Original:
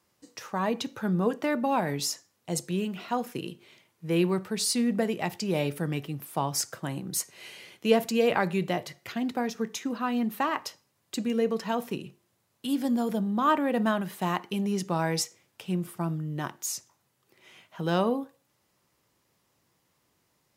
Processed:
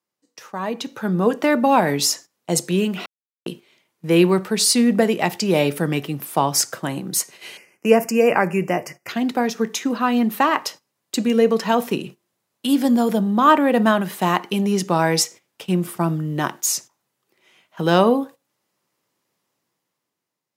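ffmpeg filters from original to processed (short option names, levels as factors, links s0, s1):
-filter_complex "[0:a]asettb=1/sr,asplit=3[s0][s1][s2];[s0]atrim=end=7.574[s3];[s1]atrim=start=7.57:end=9.09,asetpts=PTS-STARTPTS,afade=t=in:d=0.004:c=qsin,afade=t=out:st=1.516:d=0.004:c=qsin,asuperstop=centerf=3700:order=8:qfactor=1.8[s4];[s2]atrim=start=9.086[s5];[s3][s4]acrossfade=d=0.004:c1=hsin:c2=qsin[s6];[s6][s5]acrossfade=d=0.004:c1=qsin:c2=hsin,asplit=3[s7][s8][s9];[s7]atrim=end=3.06,asetpts=PTS-STARTPTS,afade=t=out:st=3.056:d=0.004:c=hsin[s10];[s8]atrim=start=3.06:end=3.46,asetpts=PTS-STARTPTS,volume=0[s11];[s9]atrim=start=3.46,asetpts=PTS-STARTPTS,afade=t=in:d=0.004:c=hsin[s12];[s10][s11][s12]concat=n=3:v=0:a=1,agate=range=0.224:threshold=0.00501:ratio=16:detection=peak,highpass=170,dynaudnorm=f=240:g=9:m=3.98"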